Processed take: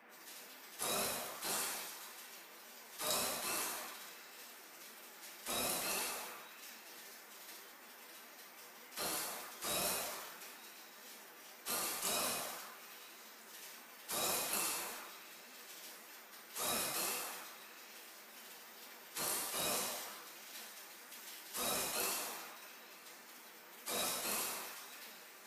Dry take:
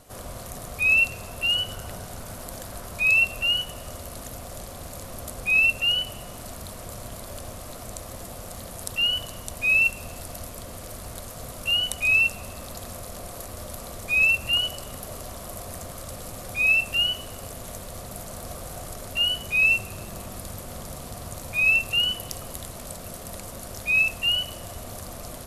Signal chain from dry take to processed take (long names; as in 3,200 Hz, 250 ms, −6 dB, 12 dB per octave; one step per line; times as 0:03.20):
high-pass filter 55 Hz 24 dB per octave
gate on every frequency bin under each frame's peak −30 dB weak
low-shelf EQ 240 Hz −11.5 dB
noise in a band 210–2,200 Hz −64 dBFS
coupled-rooms reverb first 0.69 s, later 1.8 s, DRR −1 dB
in parallel at −5 dB: soft clipping −31.5 dBFS, distortion −17 dB
on the sum: flanger 1.8 Hz, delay 3.3 ms, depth 3.6 ms, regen +68%
on a send: echo through a band-pass that steps 227 ms, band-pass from 740 Hz, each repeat 0.7 octaves, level −10 dB
on the sum: level that may fall only so fast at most 34 dB per second
level +1 dB